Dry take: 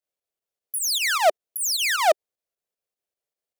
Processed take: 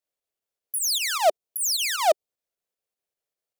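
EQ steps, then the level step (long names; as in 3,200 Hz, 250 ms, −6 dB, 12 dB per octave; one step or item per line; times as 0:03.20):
dynamic equaliser 1,700 Hz, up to −8 dB, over −38 dBFS, Q 1.2
0.0 dB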